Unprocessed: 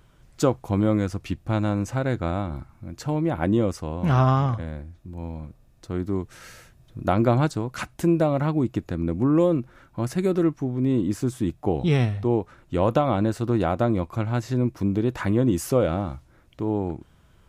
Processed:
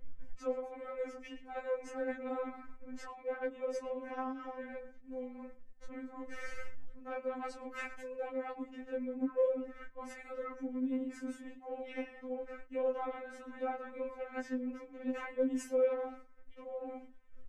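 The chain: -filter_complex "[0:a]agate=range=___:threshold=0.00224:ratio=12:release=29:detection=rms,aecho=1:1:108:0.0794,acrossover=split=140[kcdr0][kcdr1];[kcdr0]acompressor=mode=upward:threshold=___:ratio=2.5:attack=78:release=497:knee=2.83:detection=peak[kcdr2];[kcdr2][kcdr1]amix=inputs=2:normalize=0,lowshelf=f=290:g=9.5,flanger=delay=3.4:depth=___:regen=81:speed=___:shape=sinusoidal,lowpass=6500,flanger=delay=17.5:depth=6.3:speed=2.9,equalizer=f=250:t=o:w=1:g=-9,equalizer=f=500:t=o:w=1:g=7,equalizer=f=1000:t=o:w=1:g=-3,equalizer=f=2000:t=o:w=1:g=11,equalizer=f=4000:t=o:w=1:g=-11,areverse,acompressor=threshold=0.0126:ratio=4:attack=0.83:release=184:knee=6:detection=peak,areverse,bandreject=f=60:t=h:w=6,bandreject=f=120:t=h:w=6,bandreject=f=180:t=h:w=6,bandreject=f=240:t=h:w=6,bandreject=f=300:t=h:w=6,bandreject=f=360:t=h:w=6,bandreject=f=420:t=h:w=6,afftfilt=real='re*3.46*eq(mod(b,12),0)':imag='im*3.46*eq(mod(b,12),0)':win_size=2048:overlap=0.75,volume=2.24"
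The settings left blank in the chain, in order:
0.158, 0.02, 6.1, 0.39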